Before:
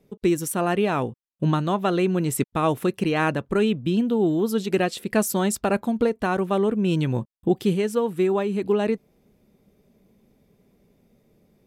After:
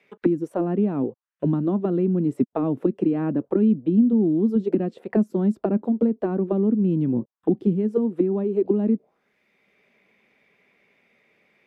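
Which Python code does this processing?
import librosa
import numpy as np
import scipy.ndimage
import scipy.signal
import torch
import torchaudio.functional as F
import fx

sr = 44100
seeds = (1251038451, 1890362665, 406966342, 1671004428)

y = fx.auto_wah(x, sr, base_hz=240.0, top_hz=2300.0, q=3.1, full_db=-18.5, direction='down')
y = fx.band_squash(y, sr, depth_pct=40)
y = y * 10.0 ** (7.5 / 20.0)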